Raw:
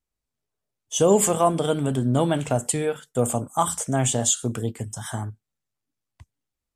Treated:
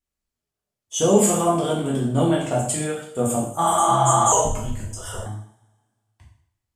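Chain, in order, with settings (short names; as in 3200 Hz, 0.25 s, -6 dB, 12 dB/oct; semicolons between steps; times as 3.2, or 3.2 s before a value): 3.65–4.38 spectral repair 230–6100 Hz before; two-slope reverb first 0.58 s, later 1.7 s, from -24 dB, DRR -5 dB; 4.32–5.26 frequency shift -210 Hz; gain -5 dB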